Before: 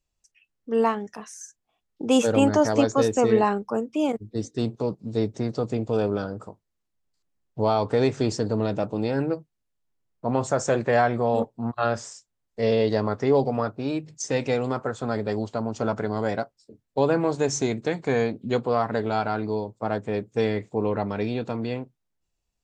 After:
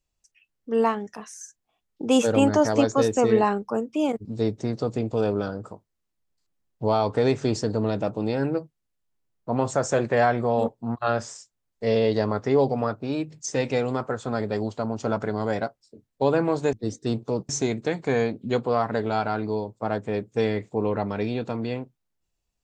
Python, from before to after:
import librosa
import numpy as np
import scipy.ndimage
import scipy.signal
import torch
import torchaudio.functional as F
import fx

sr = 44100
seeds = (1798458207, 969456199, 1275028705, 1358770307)

y = fx.edit(x, sr, fx.move(start_s=4.25, length_s=0.76, to_s=17.49), tone=tone)